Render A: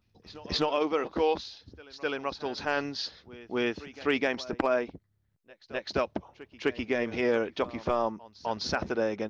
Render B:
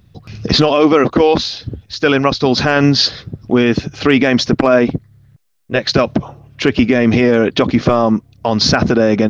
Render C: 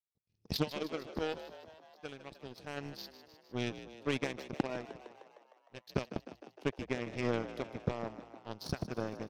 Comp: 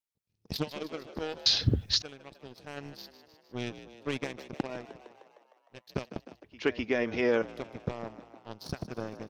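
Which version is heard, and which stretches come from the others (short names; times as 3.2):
C
1.46–2.02 from B
6.44–7.42 from A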